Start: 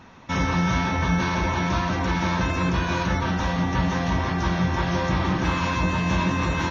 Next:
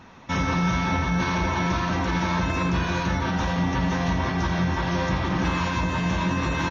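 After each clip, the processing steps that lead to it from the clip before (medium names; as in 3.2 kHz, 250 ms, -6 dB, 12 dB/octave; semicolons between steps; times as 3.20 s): peak limiter -15.5 dBFS, peak gain reduction 4.5 dB; on a send: delay 85 ms -10 dB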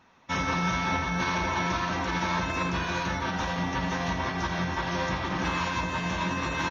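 bass shelf 330 Hz -8 dB; upward expansion 1.5:1, over -45 dBFS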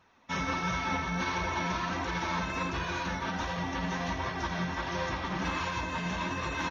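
flange 1.4 Hz, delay 1.6 ms, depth 3.7 ms, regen -38%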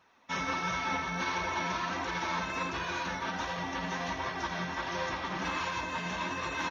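bass shelf 180 Hz -10.5 dB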